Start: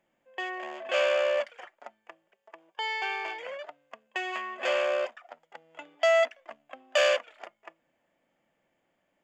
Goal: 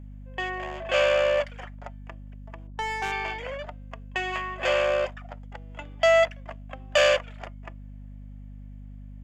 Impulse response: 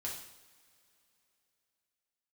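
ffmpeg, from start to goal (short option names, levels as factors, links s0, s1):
-filter_complex "[0:a]aeval=exprs='val(0)+0.00631*(sin(2*PI*50*n/s)+sin(2*PI*2*50*n/s)/2+sin(2*PI*3*50*n/s)/3+sin(2*PI*4*50*n/s)/4+sin(2*PI*5*50*n/s)/5)':c=same,asettb=1/sr,asplit=3[s0][s1][s2];[s0]atrim=end=2.674[s3];[s1]atrim=start=2.67:end=3.12,asetpts=PTS-STARTPTS,afade=t=in:d=0.004:c=qsin,afade=t=out:st=0.446:d=0.004:c=qsin,adynamicsmooth=sensitivity=3.5:basefreq=550[s4];[s2]atrim=start=3.116[s5];[s3][s4]acrossfade=d=0.004:c1=hsin:c2=qsin[s6];[s6][s5]acrossfade=d=0.004:c1=qsin:c2=hsin,volume=1.5"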